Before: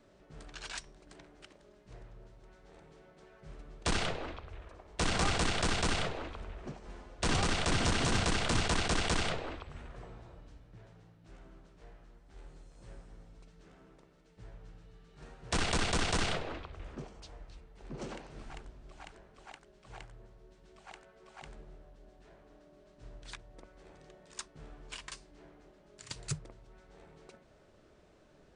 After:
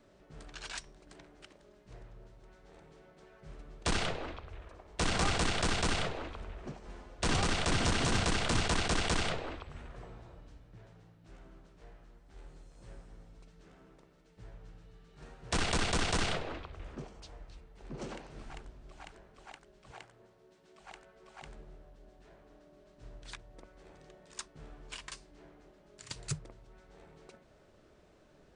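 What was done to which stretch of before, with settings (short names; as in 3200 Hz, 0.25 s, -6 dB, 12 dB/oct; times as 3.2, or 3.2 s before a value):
19.91–20.8 Bessel high-pass 210 Hz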